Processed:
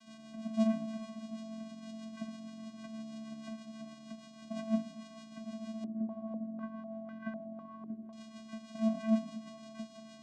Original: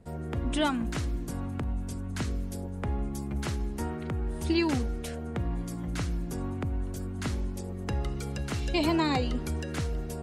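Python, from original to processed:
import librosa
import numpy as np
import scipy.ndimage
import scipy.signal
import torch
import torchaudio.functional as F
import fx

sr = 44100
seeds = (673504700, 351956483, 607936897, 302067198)

y = fx.rider(x, sr, range_db=10, speed_s=2.0)
y = fx.quant_dither(y, sr, seeds[0], bits=6, dither='triangular')
y = fx.stiff_resonator(y, sr, f0_hz=290.0, decay_s=0.28, stiffness=0.008)
y = fx.rotary(y, sr, hz=6.3)
y = fx.vocoder(y, sr, bands=4, carrier='square', carrier_hz=221.0)
y = fx.echo_split(y, sr, split_hz=600.0, low_ms=124, high_ms=422, feedback_pct=52, wet_db=-14.0)
y = fx.filter_held_lowpass(y, sr, hz=4.0, low_hz=410.0, high_hz=1600.0, at=(5.84, 8.13))
y = F.gain(torch.from_numpy(y), 8.0).numpy()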